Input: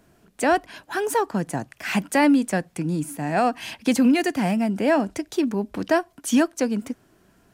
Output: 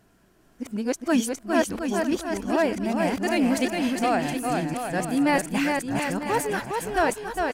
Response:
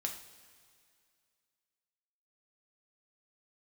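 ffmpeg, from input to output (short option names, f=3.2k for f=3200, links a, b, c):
-af "areverse,aecho=1:1:410|717.5|948.1|1121|1251:0.631|0.398|0.251|0.158|0.1,asubboost=boost=9:cutoff=61,volume=-2.5dB"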